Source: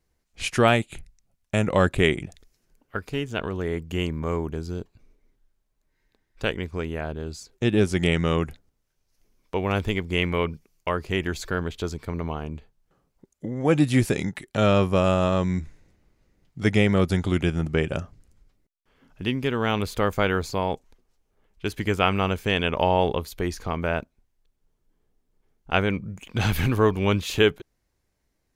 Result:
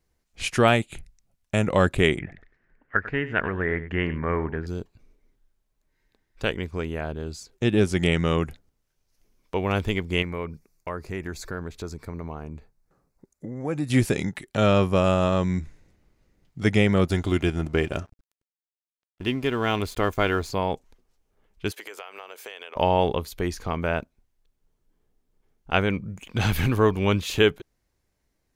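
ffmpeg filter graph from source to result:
ffmpeg -i in.wav -filter_complex "[0:a]asettb=1/sr,asplit=3[link_01][link_02][link_03];[link_01]atrim=end=2.194[link_04];[link_02]atrim=start=2.19:end=4.67,asetpts=PTS-STARTPTS,afade=type=in:duration=0.004:curve=qsin,afade=type=out:start_time=2.476:duration=0.004:curve=qsin,lowpass=frequency=1800:width_type=q:width=5.7,aecho=1:1:97:0.188,atrim=end_sample=109368[link_05];[link_03]atrim=start=4.666[link_06];[link_04][link_05]acrossfade=duration=0.004:curve1=hsin:curve2=qsin[link_07];[link_07][link_06]acrossfade=duration=0.004:curve1=qsin:curve2=hsin,asettb=1/sr,asplit=3[link_08][link_09][link_10];[link_08]atrim=end=10.224[link_11];[link_09]atrim=start=10.22:end=13.9,asetpts=PTS-STARTPTS,afade=type=in:duration=0.004:curve=qsin,afade=type=out:start_time=3.676:duration=0.004:curve=qsin,equalizer=frequency=3100:width_type=o:width=0.36:gain=-14,acompressor=threshold=-37dB:ratio=1.5:attack=3.2:release=140:knee=1:detection=peak[link_12];[link_10]atrim=start=13.896[link_13];[link_11][link_12]acrossfade=duration=0.004:curve1=hsin:curve2=qsin[link_14];[link_14][link_13]acrossfade=duration=0.004:curve1=qsin:curve2=hsin,asettb=1/sr,asplit=3[link_15][link_16][link_17];[link_15]atrim=end=17.064[link_18];[link_16]atrim=start=17.06:end=20.5,asetpts=PTS-STARTPTS,afade=type=in:duration=0.004:curve=qsin,afade=type=out:start_time=3.436:duration=0.004:curve=qsin,aecho=1:1:2.9:0.33,atrim=end_sample=151704,aeval=exprs='sgn(val(0))*max(abs(val(0))-0.00447,0)':channel_layout=same[link_19];[link_17]atrim=start=20.496[link_20];[link_18][link_19]acrossfade=duration=0.004:curve1=hsin:curve2=qsin[link_21];[link_21][link_20]acrossfade=duration=0.004:curve1=qsin:curve2=hsin,asettb=1/sr,asplit=3[link_22][link_23][link_24];[link_22]atrim=end=21.714[link_25];[link_23]atrim=start=21.71:end=22.76,asetpts=PTS-STARTPTS,afade=type=in:duration=0.004:curve=qsin,afade=type=out:start_time=1.046:duration=0.004:curve=qsin,highpass=frequency=440:width=0.5412,highpass=frequency=440:width=1.3066,acompressor=threshold=-35dB:ratio=12:attack=3.2:release=140:knee=1:detection=peak,highshelf=frequency=7500:gain=5.5[link_26];[link_24]atrim=start=22.756[link_27];[link_25][link_26]acrossfade=duration=0.004:curve1=hsin:curve2=qsin[link_28];[link_28][link_27]acrossfade=duration=0.004:curve1=qsin:curve2=hsin" out.wav

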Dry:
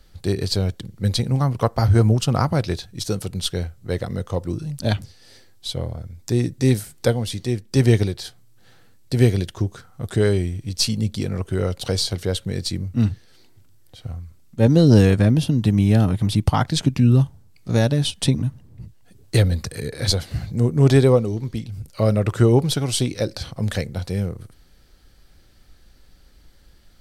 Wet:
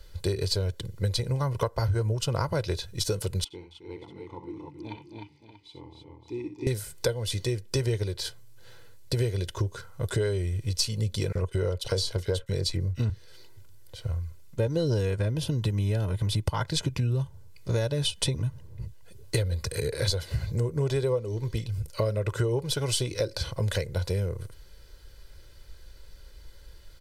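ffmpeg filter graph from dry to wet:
ffmpeg -i in.wav -filter_complex "[0:a]asettb=1/sr,asplit=3[link_01][link_02][link_03];[link_01]atrim=end=3.444[link_04];[link_02]atrim=start=3.44:end=6.67,asetpts=PTS-STARTPTS,afade=type=in:duration=0.004:curve=qsin,afade=type=out:start_time=3.226:duration=0.004:curve=qsin,asplit=3[link_05][link_06][link_07];[link_05]bandpass=frequency=300:width_type=q:width=8,volume=0dB[link_08];[link_06]bandpass=frequency=870:width_type=q:width=8,volume=-6dB[link_09];[link_07]bandpass=frequency=2240:width_type=q:width=8,volume=-9dB[link_10];[link_08][link_09][link_10]amix=inputs=3:normalize=0,aecho=1:1:63|86|268|304|573|635:0.335|0.119|0.335|0.596|0.2|0.2,atrim=end_sample=142443[link_11];[link_03]atrim=start=6.666[link_12];[link_04][link_11]acrossfade=duration=0.004:curve1=hsin:curve2=qsin[link_13];[link_13][link_12]acrossfade=duration=0.004:curve1=qsin:curve2=hsin,asettb=1/sr,asplit=3[link_14][link_15][link_16];[link_14]atrim=end=11.324[link_17];[link_15]atrim=start=11.32:end=13.1,asetpts=PTS-STARTPTS,afade=type=in:duration=0.004:curve=qsin,afade=type=out:start_time=1.776:duration=0.004:curve=qsin,agate=range=-33dB:threshold=-32dB:ratio=3:release=100:detection=peak,highshelf=frequency=10000:gain=-5.5,acrossover=split=1900[link_18][link_19];[link_18]adelay=30[link_20];[link_20][link_19]amix=inputs=2:normalize=0,atrim=end_sample=78498[link_21];[link_16]atrim=start=13.096[link_22];[link_17][link_21]acrossfade=duration=0.004:curve1=hsin:curve2=qsin[link_23];[link_23][link_22]acrossfade=duration=0.004:curve1=qsin:curve2=hsin,equalizer=frequency=170:width=1.5:gain=-4,aecho=1:1:2:0.68,acompressor=threshold=-24dB:ratio=6" out.wav

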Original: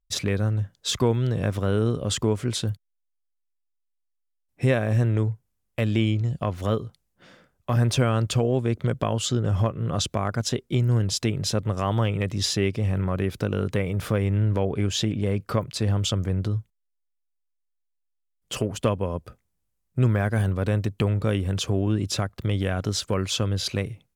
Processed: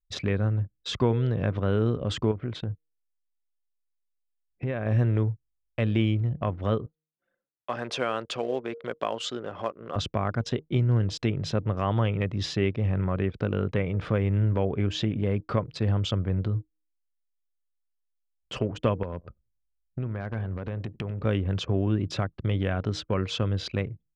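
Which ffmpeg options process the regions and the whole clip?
ffmpeg -i in.wav -filter_complex "[0:a]asettb=1/sr,asplit=3[link_01][link_02][link_03];[link_01]atrim=end=2.314[link_04];[link_02]atrim=start=2.31:end=4.86,asetpts=PTS-STARTPTS,afade=type=in:duration=0.004:curve=qsin,afade=type=out:start_time=2.546:duration=0.004:curve=qsin,bass=frequency=250:gain=0,treble=frequency=4000:gain=-10,acompressor=threshold=-25dB:ratio=4:attack=3.2:release=140:knee=1:detection=peak[link_05];[link_03]atrim=start=4.856[link_06];[link_04][link_05]acrossfade=duration=0.004:curve1=hsin:curve2=qsin[link_07];[link_07][link_06]acrossfade=duration=0.004:curve1=qsin:curve2=hsin,asettb=1/sr,asplit=3[link_08][link_09][link_10];[link_08]atrim=end=6.864[link_11];[link_09]atrim=start=6.86:end=9.96,asetpts=PTS-STARTPTS,afade=type=in:duration=0.004:curve=qsin,afade=type=out:start_time=3.096:duration=0.004:curve=qsin,highpass=410,acrusher=bits=6:mode=log:mix=0:aa=0.000001,highshelf=frequency=4600:gain=5[link_12];[link_10]atrim=start=9.956[link_13];[link_11][link_12]acrossfade=duration=0.004:curve1=hsin:curve2=qsin[link_14];[link_14][link_13]acrossfade=duration=0.004:curve1=qsin:curve2=hsin,asettb=1/sr,asplit=3[link_15][link_16][link_17];[link_15]atrim=end=19.034[link_18];[link_16]atrim=start=19.03:end=21.25,asetpts=PTS-STARTPTS,afade=type=in:duration=0.004:curve=qsin,afade=type=out:start_time=2.216:duration=0.004:curve=qsin,acompressor=threshold=-25dB:ratio=16:attack=3.2:release=140:knee=1:detection=peak,aeval=exprs='0.0841*(abs(mod(val(0)/0.0841+3,4)-2)-1)':channel_layout=same,aecho=1:1:93|186|279:0.15|0.0419|0.0117,atrim=end_sample=97902[link_19];[link_17]atrim=start=21.246[link_20];[link_18][link_19]acrossfade=duration=0.004:curve1=hsin:curve2=qsin[link_21];[link_21][link_20]acrossfade=duration=0.004:curve1=qsin:curve2=hsin,lowpass=3400,bandreject=frequency=155.6:width_type=h:width=4,bandreject=frequency=311.2:width_type=h:width=4,bandreject=frequency=466.8:width_type=h:width=4,anlmdn=0.398,volume=-1.5dB" out.wav

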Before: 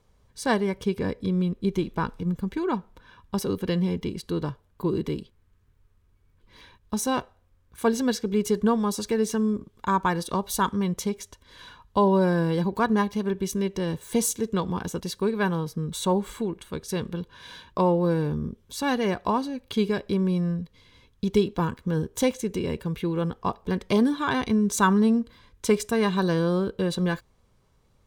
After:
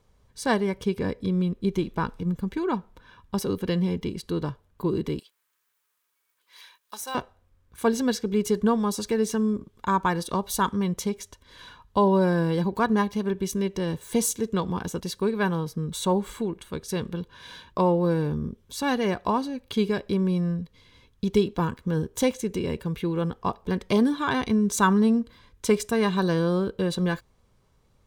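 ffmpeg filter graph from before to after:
ffmpeg -i in.wav -filter_complex "[0:a]asettb=1/sr,asplit=3[link_01][link_02][link_03];[link_01]atrim=end=5.194[link_04];[link_02]atrim=start=5.19:end=7.15,asetpts=PTS-STARTPTS,afade=type=in:duration=0.004:curve=qsin,afade=type=out:start_time=1.956:duration=0.004:curve=qsin,highpass=970,aemphasis=mode=production:type=50kf,deesser=0.95[link_05];[link_03]atrim=start=7.146[link_06];[link_04][link_05]acrossfade=duration=0.004:curve1=hsin:curve2=qsin[link_07];[link_07][link_06]acrossfade=duration=0.004:curve1=qsin:curve2=hsin" out.wav

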